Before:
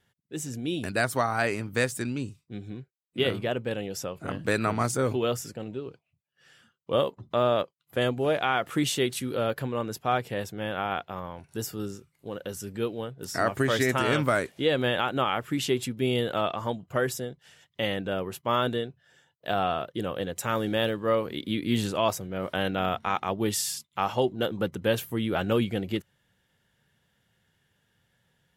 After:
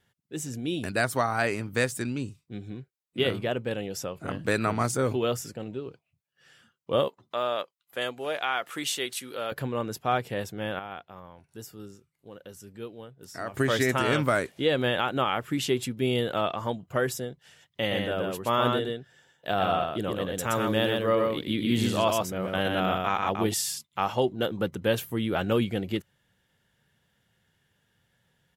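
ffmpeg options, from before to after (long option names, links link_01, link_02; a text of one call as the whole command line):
ffmpeg -i in.wav -filter_complex "[0:a]asettb=1/sr,asplit=3[link_01][link_02][link_03];[link_01]atrim=end=7.084[link_04];[link_02]atrim=start=7.08:end=9.52,asetpts=PTS-STARTPTS,afade=type=in:duration=0.004:curve=qsin,afade=type=out:start_time=2.436:duration=0.004:curve=qsin,highpass=frequency=950:poles=1[link_05];[link_03]atrim=start=9.516[link_06];[link_04][link_05]acrossfade=duration=0.004:curve1=hsin:curve2=qsin[link_07];[link_07][link_06]acrossfade=duration=0.004:curve1=qsin:curve2=hsin,asplit=3[link_08][link_09][link_10];[link_08]afade=type=out:start_time=17.84:duration=0.02[link_11];[link_09]aecho=1:1:122:0.708,afade=type=in:start_time=17.84:duration=0.02,afade=type=out:start_time=23.52:duration=0.02[link_12];[link_10]afade=type=in:start_time=23.52:duration=0.02[link_13];[link_11][link_12][link_13]amix=inputs=3:normalize=0,asplit=3[link_14][link_15][link_16];[link_14]atrim=end=10.792[link_17];[link_15]atrim=start=10.788:end=13.542,asetpts=PTS-STARTPTS,volume=-9.5dB[link_18];[link_16]atrim=start=13.538[link_19];[link_17][link_18]acrossfade=duration=0.004:curve1=hsin:curve2=hsin[link_20];[link_20][link_19]acrossfade=duration=0.004:curve1=hsin:curve2=hsin" out.wav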